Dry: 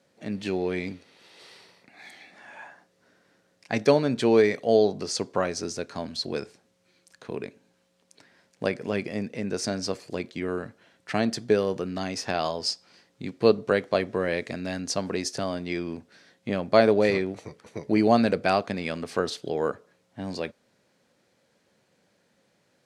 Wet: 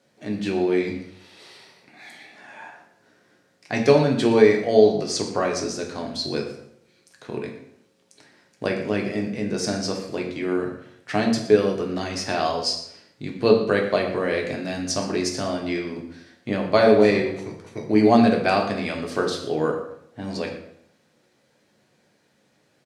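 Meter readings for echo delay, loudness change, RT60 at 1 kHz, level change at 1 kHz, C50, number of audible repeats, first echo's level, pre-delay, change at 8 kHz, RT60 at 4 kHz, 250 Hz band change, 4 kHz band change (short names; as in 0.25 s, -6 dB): 0.119 s, +4.0 dB, 0.70 s, +3.5 dB, 6.5 dB, 1, -14.5 dB, 3 ms, +3.5 dB, 0.55 s, +5.0 dB, +3.5 dB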